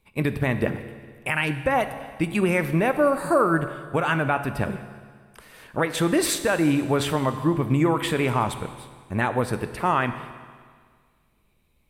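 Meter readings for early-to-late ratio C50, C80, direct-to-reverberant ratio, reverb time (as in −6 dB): 11.0 dB, 12.0 dB, 9.5 dB, 1.8 s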